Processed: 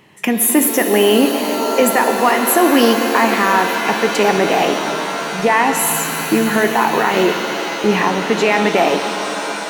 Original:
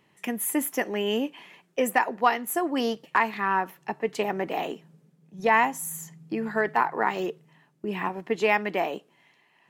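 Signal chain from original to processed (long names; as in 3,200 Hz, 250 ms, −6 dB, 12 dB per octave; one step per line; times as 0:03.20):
boost into a limiter +19 dB
reverb with rising layers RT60 4 s, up +7 semitones, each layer −2 dB, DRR 6 dB
level −4 dB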